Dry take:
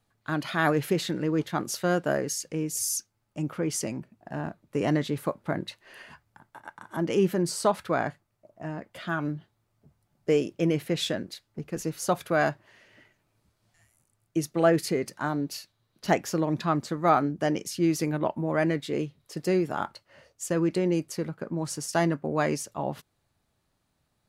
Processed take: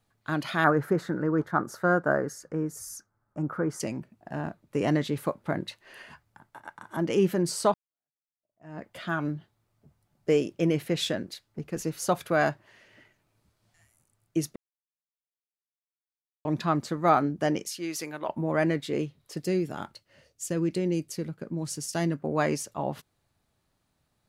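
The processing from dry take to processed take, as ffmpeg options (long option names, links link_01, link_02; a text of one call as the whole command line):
ffmpeg -i in.wav -filter_complex "[0:a]asettb=1/sr,asplit=3[link_01][link_02][link_03];[link_01]atrim=end=0.644[link_04];[link_02]atrim=start=0.64:end=3.8,asetpts=PTS-STARTPTS,afade=type=in:duration=0.004:curve=qsin,afade=type=out:start_time=3.156:duration=0.004:curve=qsin,highshelf=frequency=2000:width_type=q:width=3:gain=-11.5[link_05];[link_03]atrim=start=3.796[link_06];[link_04][link_05]acrossfade=duration=0.004:curve1=hsin:curve2=qsin[link_07];[link_07][link_06]acrossfade=duration=0.004:curve1=qsin:curve2=hsin,asettb=1/sr,asplit=3[link_08][link_09][link_10];[link_08]atrim=end=17.654[link_11];[link_09]atrim=start=17.65:end=18.29,asetpts=PTS-STARTPTS,afade=type=in:duration=0.004:curve=qsin,afade=type=out:start_time=0.636:duration=0.004:curve=qsin,highpass=frequency=1000:poles=1[link_12];[link_10]atrim=start=18.286[link_13];[link_11][link_12]acrossfade=duration=0.004:curve1=hsin:curve2=qsin[link_14];[link_14][link_13]acrossfade=duration=0.004:curve1=qsin:curve2=hsin,asettb=1/sr,asplit=3[link_15][link_16][link_17];[link_15]atrim=end=19.394[link_18];[link_16]atrim=start=19.39:end=22.2,asetpts=PTS-STARTPTS,afade=type=in:duration=0.004:curve=qsin,afade=type=out:start_time=2.806:duration=0.004:curve=qsin,equalizer=frequency=1000:width_type=o:width=2:gain=-9[link_19];[link_17]atrim=start=22.196[link_20];[link_18][link_19]acrossfade=duration=0.004:curve1=hsin:curve2=qsin[link_21];[link_21][link_20]acrossfade=duration=0.004:curve1=qsin:curve2=hsin,asplit=4[link_22][link_23][link_24][link_25];[link_22]atrim=end=7.74,asetpts=PTS-STARTPTS,afade=type=out:start_time=7.736:duration=0.004:curve=hsin[link_26];[link_23]atrim=start=7.74:end=14.56,asetpts=PTS-STARTPTS,afade=type=in:duration=1.06:curve=exp,afade=type=out:start_time=6.816:duration=0.004:curve=hsin[link_27];[link_24]atrim=start=14.56:end=16.45,asetpts=PTS-STARTPTS,volume=0[link_28];[link_25]atrim=start=16.45,asetpts=PTS-STARTPTS,afade=type=in:duration=0.004:curve=hsin[link_29];[link_26][link_27][link_28][link_29]concat=n=4:v=0:a=1" out.wav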